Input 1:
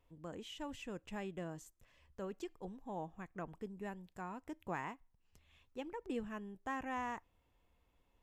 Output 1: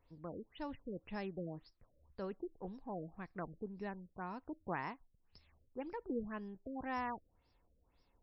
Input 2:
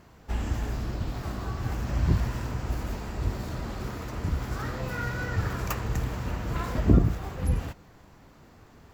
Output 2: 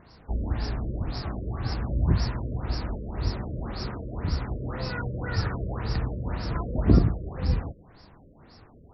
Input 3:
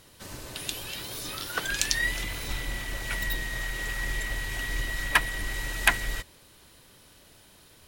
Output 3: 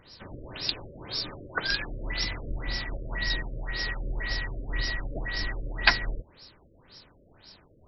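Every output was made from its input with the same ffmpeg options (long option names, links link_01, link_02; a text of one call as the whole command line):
ffmpeg -i in.wav -af "aexciter=amount=9.6:drive=7.8:freq=4800,afftfilt=real='re*lt(b*sr/1024,600*pow(5700/600,0.5+0.5*sin(2*PI*1.9*pts/sr)))':imag='im*lt(b*sr/1024,600*pow(5700/600,0.5+0.5*sin(2*PI*1.9*pts/sr)))':win_size=1024:overlap=0.75,volume=1dB" out.wav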